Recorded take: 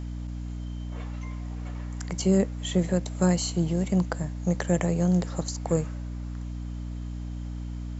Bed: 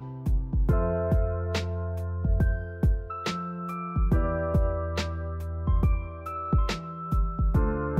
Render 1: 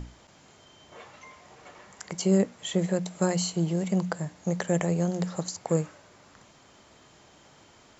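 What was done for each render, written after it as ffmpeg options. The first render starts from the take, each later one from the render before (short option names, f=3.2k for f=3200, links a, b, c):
-af "bandreject=f=60:t=h:w=6,bandreject=f=120:t=h:w=6,bandreject=f=180:t=h:w=6,bandreject=f=240:t=h:w=6,bandreject=f=300:t=h:w=6"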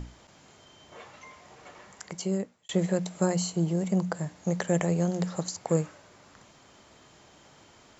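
-filter_complex "[0:a]asettb=1/sr,asplit=3[a][b][c];[a]atrim=end=3.214[d];[b]atrim=start=3.21:end=4.15,asetpts=PTS-STARTPTS,afade=t=in:d=0.004:c=qsin,afade=t=out:st=0.936:d=0.004:c=qsin,equalizer=f=3k:t=o:w=2:g=-4.5[e];[c]atrim=start=4.146[f];[d][e]acrossfade=d=0.004:c1=hsin:c2=qsin[g];[g][f]acrossfade=d=0.004:c1=qsin:c2=hsin,asplit=2[h][i];[h]atrim=end=2.69,asetpts=PTS-STARTPTS,afade=t=out:st=1.88:d=0.81[j];[i]atrim=start=2.69,asetpts=PTS-STARTPTS,afade=t=in:d=0.004:c=hsin[k];[j][k]concat=n=2:v=0:a=1"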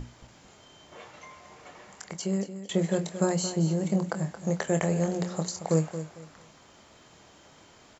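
-filter_complex "[0:a]asplit=2[a][b];[b]adelay=25,volume=-8.5dB[c];[a][c]amix=inputs=2:normalize=0,asplit=2[d][e];[e]aecho=0:1:225|450|675:0.266|0.0692|0.018[f];[d][f]amix=inputs=2:normalize=0"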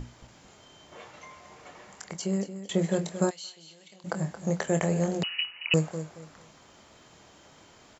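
-filter_complex "[0:a]asplit=3[a][b][c];[a]afade=t=out:st=3.29:d=0.02[d];[b]bandpass=f=3.4k:t=q:w=2.6,afade=t=in:st=3.29:d=0.02,afade=t=out:st=4.04:d=0.02[e];[c]afade=t=in:st=4.04:d=0.02[f];[d][e][f]amix=inputs=3:normalize=0,asettb=1/sr,asplit=3[g][h][i];[g]atrim=end=5.234[j];[h]atrim=start=5.23:end=5.74,asetpts=PTS-STARTPTS,afade=t=in:d=0.004:c=qsin,afade=t=out:st=0.506:d=0.004:c=qsin,lowpass=f=2.6k:t=q:w=0.5098,lowpass=f=2.6k:t=q:w=0.6013,lowpass=f=2.6k:t=q:w=0.9,lowpass=f=2.6k:t=q:w=2.563,afreqshift=-3100[k];[i]atrim=start=5.736[l];[j][k]acrossfade=d=0.004:c1=hsin:c2=qsin[m];[m][l]acrossfade=d=0.004:c1=qsin:c2=hsin"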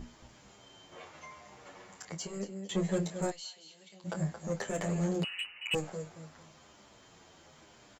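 -filter_complex "[0:a]asoftclip=type=tanh:threshold=-22dB,asplit=2[a][b];[b]adelay=9,afreqshift=-0.95[c];[a][c]amix=inputs=2:normalize=1"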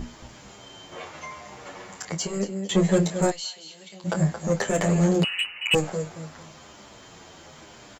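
-af "volume=11dB"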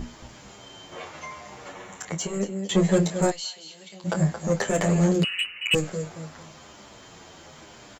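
-filter_complex "[0:a]asettb=1/sr,asplit=3[a][b][c];[a]atrim=end=1.724[d];[b]atrim=start=1.72:end=2.59,asetpts=PTS-STARTPTS,afade=t=in:d=0.004:c=qsin,afade=t=out:st=0.866:d=0.004:c=qsin,equalizer=f=4.8k:w=7.7:g=-14[e];[c]atrim=start=2.586[f];[d][e]acrossfade=d=0.004:c1=hsin:c2=qsin[g];[g][f]acrossfade=d=0.004:c1=qsin:c2=hsin,asettb=1/sr,asplit=3[h][i][j];[h]atrim=end=5.124[k];[i]atrim=start=5.12:end=6.03,asetpts=PTS-STARTPTS,afade=t=in:d=0.004:c=qsin,afade=t=out:st=0.906:d=0.004:c=qsin,equalizer=f=820:w=1.8:g=-10.5[l];[j]atrim=start=6.026[m];[k][l]acrossfade=d=0.004:c1=hsin:c2=qsin[n];[n][m]acrossfade=d=0.004:c1=qsin:c2=hsin"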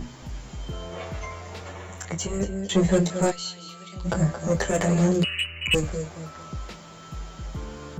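-filter_complex "[1:a]volume=-11dB[a];[0:a][a]amix=inputs=2:normalize=0"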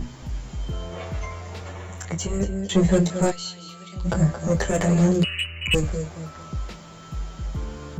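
-af "lowshelf=f=150:g=6.5"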